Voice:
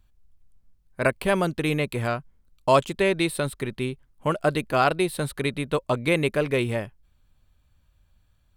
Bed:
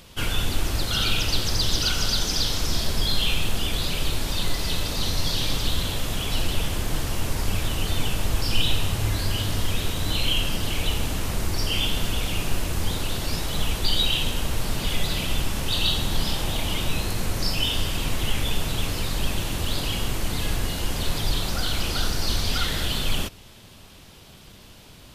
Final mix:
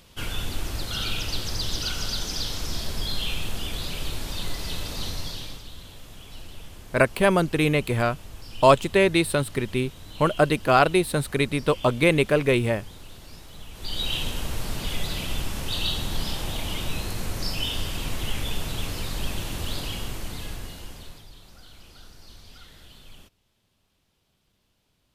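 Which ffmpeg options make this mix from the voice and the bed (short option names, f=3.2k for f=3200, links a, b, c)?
-filter_complex "[0:a]adelay=5950,volume=3dB[a];[1:a]volume=8dB,afade=t=out:st=5.03:d=0.61:silence=0.251189,afade=t=in:st=13.72:d=0.43:silence=0.211349,afade=t=out:st=19.69:d=1.58:silence=0.105925[b];[a][b]amix=inputs=2:normalize=0"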